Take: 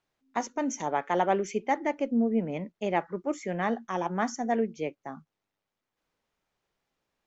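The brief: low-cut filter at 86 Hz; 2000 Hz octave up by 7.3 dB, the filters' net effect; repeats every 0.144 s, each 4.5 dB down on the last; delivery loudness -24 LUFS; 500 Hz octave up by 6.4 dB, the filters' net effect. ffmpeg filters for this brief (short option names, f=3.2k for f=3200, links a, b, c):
-af "highpass=86,equalizer=f=500:t=o:g=7.5,equalizer=f=2k:t=o:g=8,aecho=1:1:144|288|432|576|720|864|1008|1152|1296:0.596|0.357|0.214|0.129|0.0772|0.0463|0.0278|0.0167|0.01"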